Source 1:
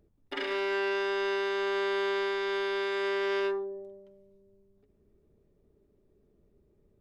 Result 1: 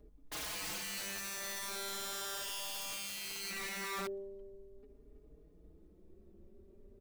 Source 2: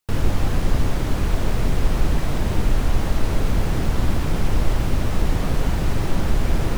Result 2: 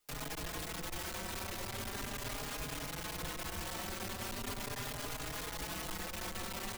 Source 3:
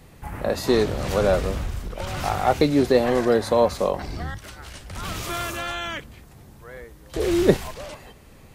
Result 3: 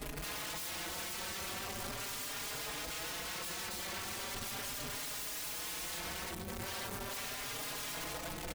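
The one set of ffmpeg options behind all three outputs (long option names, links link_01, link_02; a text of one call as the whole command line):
ffmpeg -i in.wav -filter_complex "[0:a]asoftclip=type=hard:threshold=-18.5dB,equalizer=frequency=120:width_type=o:width=0.98:gain=-14.5,acompressor=threshold=-34dB:ratio=12,lowshelf=frequency=400:gain=10.5,asplit=2[link_01][link_02];[link_02]aecho=0:1:324:0.335[link_03];[link_01][link_03]amix=inputs=2:normalize=0,acrossover=split=490|3000[link_04][link_05][link_06];[link_04]acompressor=threshold=-36dB:ratio=6[link_07];[link_07][link_05][link_06]amix=inputs=3:normalize=0,aeval=exprs='(mod(79.4*val(0)+1,2)-1)/79.4':channel_layout=same,asplit=2[link_08][link_09];[link_09]adelay=4.4,afreqshift=0.39[link_10];[link_08][link_10]amix=inputs=2:normalize=1,volume=4.5dB" out.wav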